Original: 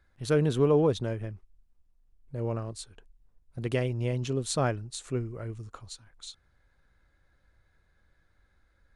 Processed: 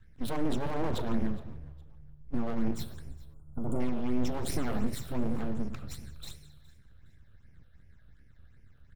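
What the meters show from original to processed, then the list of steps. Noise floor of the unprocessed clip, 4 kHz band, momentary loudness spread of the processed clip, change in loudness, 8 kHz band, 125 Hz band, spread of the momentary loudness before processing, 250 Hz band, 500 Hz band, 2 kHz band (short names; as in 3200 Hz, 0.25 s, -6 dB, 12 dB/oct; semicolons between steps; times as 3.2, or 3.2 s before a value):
-68 dBFS, -5.0 dB, 15 LU, -5.5 dB, -6.5 dB, -7.5 dB, 21 LU, +0.5 dB, -9.5 dB, -4.5 dB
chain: minimum comb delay 0.54 ms; low shelf 290 Hz +9.5 dB; plate-style reverb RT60 0.97 s, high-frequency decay 0.9×, pre-delay 0 ms, DRR 7.5 dB; dynamic EQ 630 Hz, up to +4 dB, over -36 dBFS, Q 0.95; limiter -21.5 dBFS, peak gain reduction 14 dB; phaser stages 8, 2.7 Hz, lowest notch 250–1200 Hz; full-wave rectifier; on a send: frequency-shifting echo 0.414 s, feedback 33%, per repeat -74 Hz, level -22 dB; on the sum: spectral gain 3.34–3.8, 1500–6800 Hz -23 dB; gain +2.5 dB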